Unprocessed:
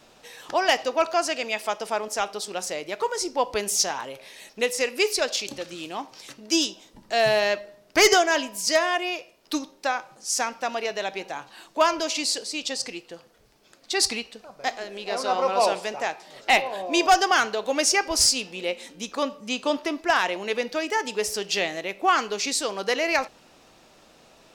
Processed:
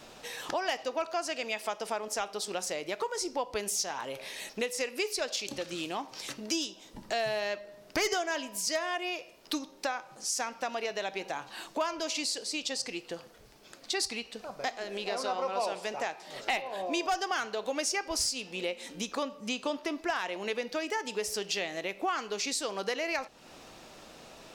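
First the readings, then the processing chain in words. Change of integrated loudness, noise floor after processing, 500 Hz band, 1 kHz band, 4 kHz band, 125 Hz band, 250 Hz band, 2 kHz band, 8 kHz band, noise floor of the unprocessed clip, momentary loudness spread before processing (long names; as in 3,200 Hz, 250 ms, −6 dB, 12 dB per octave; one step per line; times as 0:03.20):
−9.0 dB, −54 dBFS, −8.5 dB, −9.5 dB, −8.5 dB, −5.0 dB, −7.0 dB, −9.5 dB, −8.0 dB, −56 dBFS, 14 LU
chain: downward compressor 3 to 1, threshold −37 dBFS, peak gain reduction 17 dB
level +3.5 dB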